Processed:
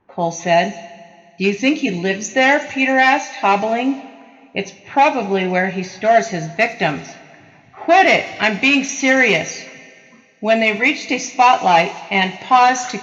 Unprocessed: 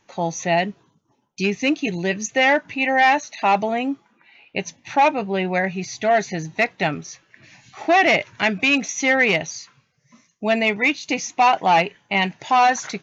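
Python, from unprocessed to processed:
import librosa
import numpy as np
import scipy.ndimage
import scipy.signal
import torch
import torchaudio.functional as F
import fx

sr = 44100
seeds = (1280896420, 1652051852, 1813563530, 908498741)

y = fx.echo_wet_highpass(x, sr, ms=92, feedback_pct=85, hz=4500.0, wet_db=-14)
y = fx.env_lowpass(y, sr, base_hz=1200.0, full_db=-18.0)
y = fx.rev_double_slope(y, sr, seeds[0], early_s=0.27, late_s=2.2, knee_db=-18, drr_db=6.5)
y = y * 10.0 ** (3.0 / 20.0)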